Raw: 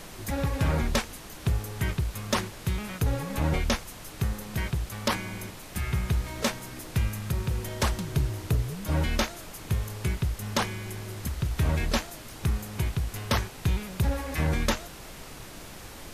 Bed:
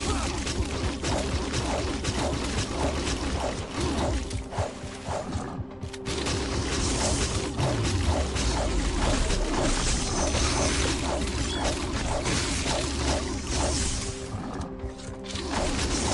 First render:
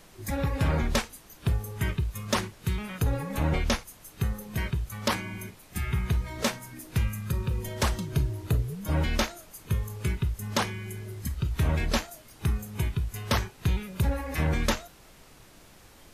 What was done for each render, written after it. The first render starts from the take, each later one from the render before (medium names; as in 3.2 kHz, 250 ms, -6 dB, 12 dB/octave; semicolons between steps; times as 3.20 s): noise print and reduce 10 dB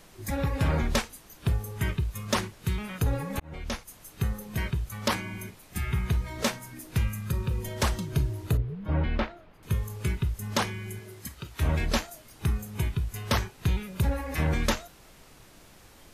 3.32–3.88 s: slow attack 698 ms; 8.57–9.63 s: distance through air 400 m; 10.98–11.60 s: high-pass 240 Hz -> 590 Hz 6 dB/octave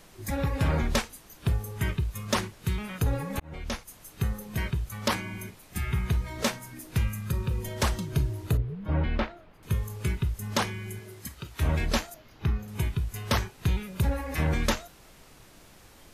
12.14–12.68 s: boxcar filter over 5 samples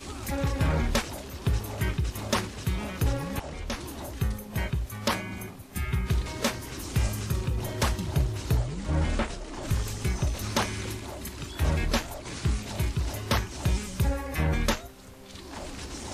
add bed -11.5 dB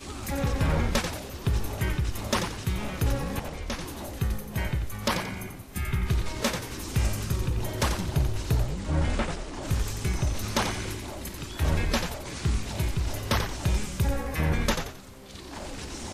frequency-shifting echo 89 ms, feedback 35%, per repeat -59 Hz, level -7 dB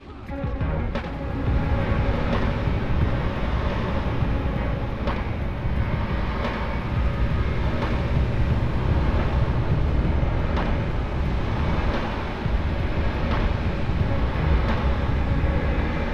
distance through air 370 m; swelling reverb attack 1510 ms, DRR -5.5 dB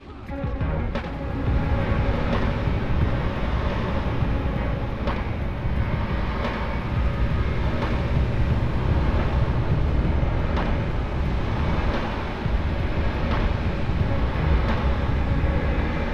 no audible change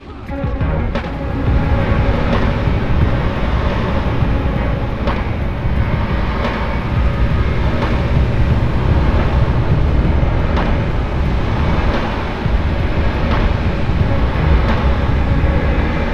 trim +8 dB